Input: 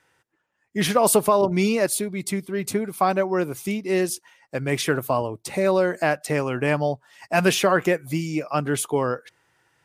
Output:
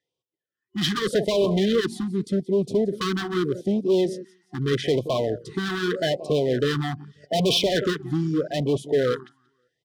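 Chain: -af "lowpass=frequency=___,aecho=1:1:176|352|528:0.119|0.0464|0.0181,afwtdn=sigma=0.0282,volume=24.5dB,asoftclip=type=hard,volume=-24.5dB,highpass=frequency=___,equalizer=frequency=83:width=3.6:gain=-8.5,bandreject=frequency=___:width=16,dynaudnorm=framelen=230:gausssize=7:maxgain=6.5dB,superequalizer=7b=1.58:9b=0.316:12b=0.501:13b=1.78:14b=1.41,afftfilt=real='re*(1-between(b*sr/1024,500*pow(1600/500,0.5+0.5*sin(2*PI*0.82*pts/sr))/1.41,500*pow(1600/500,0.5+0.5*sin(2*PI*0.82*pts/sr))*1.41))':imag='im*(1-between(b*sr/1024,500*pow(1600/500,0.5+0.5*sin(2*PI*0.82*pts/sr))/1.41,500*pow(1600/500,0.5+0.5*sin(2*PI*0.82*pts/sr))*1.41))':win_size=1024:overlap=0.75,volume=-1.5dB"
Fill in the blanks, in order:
6600, 41, 2200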